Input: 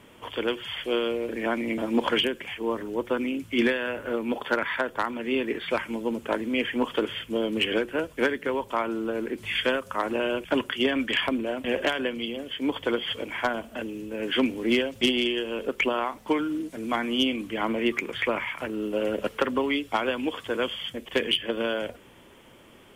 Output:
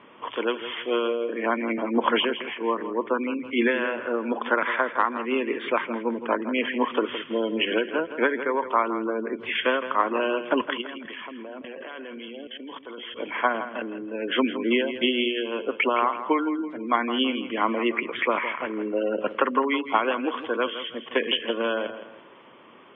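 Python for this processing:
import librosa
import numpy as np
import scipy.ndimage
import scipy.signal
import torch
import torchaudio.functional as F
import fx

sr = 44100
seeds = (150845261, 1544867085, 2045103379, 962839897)

y = scipy.signal.sosfilt(scipy.signal.butter(2, 210.0, 'highpass', fs=sr, output='sos'), x)
y = fx.spec_gate(y, sr, threshold_db=-25, keep='strong')
y = scipy.signal.sosfilt(scipy.signal.butter(4, 3200.0, 'lowpass', fs=sr, output='sos'), y)
y = fx.peak_eq(y, sr, hz=1100.0, db=8.0, octaves=0.4)
y = fx.level_steps(y, sr, step_db=20, at=(10.8, 13.15), fade=0.02)
y = fx.echo_feedback(y, sr, ms=164, feedback_pct=35, wet_db=-11.5)
y = F.gain(torch.from_numpy(y), 1.5).numpy()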